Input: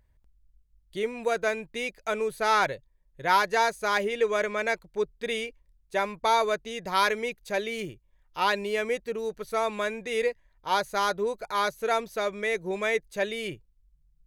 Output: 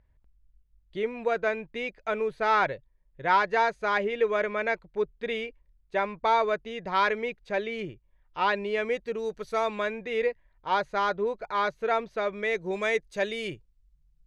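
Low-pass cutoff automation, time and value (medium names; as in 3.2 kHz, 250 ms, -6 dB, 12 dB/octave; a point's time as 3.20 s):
8.62 s 2.9 kHz
9.42 s 7 kHz
10.02 s 2.9 kHz
12.25 s 2.9 kHz
12.77 s 7 kHz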